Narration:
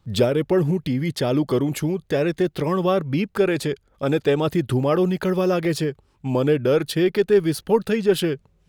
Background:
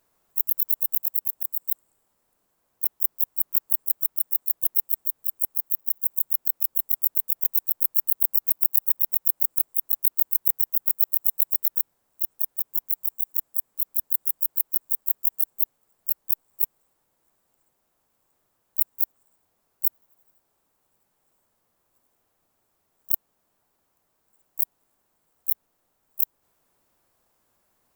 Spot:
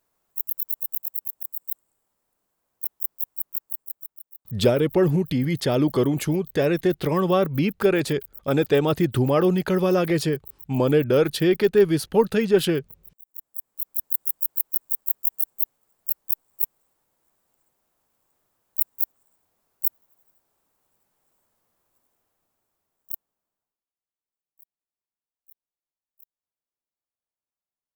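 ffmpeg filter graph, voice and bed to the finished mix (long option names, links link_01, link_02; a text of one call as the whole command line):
ffmpeg -i stem1.wav -i stem2.wav -filter_complex "[0:a]adelay=4450,volume=0dB[link_01];[1:a]volume=16.5dB,afade=type=out:start_time=3.3:duration=0.96:silence=0.141254,afade=type=in:start_time=13.24:duration=0.87:silence=0.0891251,afade=type=out:start_time=21.75:duration=2.1:silence=0.0354813[link_02];[link_01][link_02]amix=inputs=2:normalize=0" out.wav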